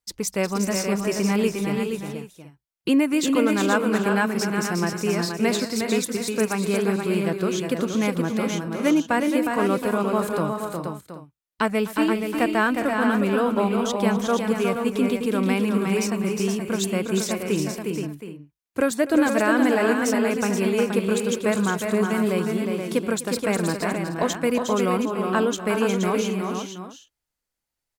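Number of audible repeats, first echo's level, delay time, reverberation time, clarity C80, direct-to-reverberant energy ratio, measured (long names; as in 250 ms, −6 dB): 6, −17.5 dB, 251 ms, no reverb audible, no reverb audible, no reverb audible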